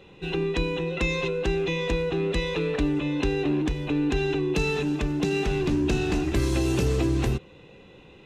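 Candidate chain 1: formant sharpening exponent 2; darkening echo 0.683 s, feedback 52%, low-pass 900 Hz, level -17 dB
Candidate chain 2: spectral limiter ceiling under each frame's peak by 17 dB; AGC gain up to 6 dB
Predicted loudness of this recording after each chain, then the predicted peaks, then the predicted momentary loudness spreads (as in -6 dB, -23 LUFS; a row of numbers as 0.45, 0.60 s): -26.5, -19.5 LUFS; -13.5, -5.0 dBFS; 4, 4 LU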